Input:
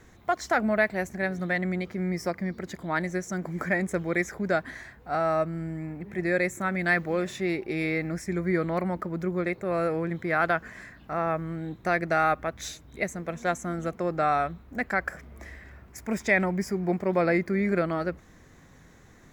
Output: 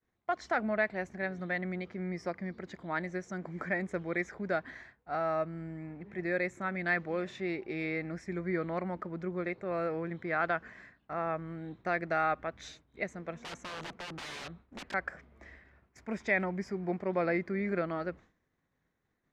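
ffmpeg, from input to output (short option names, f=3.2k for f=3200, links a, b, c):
-filter_complex "[0:a]asettb=1/sr,asplit=3[a][b][c];[a]atrim=end=13.374[d];[b]atrim=start=13.37:end=14.94,asetpts=PTS-STARTPTS,afade=t=in:d=0.004:c=qsin,afade=t=out:st=1.566:d=0.004:c=qsin,aeval=exprs='(mod(28.2*val(0)+1,2)-1)/28.2':c=same[e];[c]atrim=start=14.936[f];[d][e]acrossfade=d=0.004:c1=hsin:c2=qsin[g];[g][f]acrossfade=d=0.004:c1=qsin:c2=hsin,agate=range=-33dB:threshold=-41dB:ratio=3:detection=peak,lowpass=4.2k,lowshelf=f=140:g=-6,volume=-6dB"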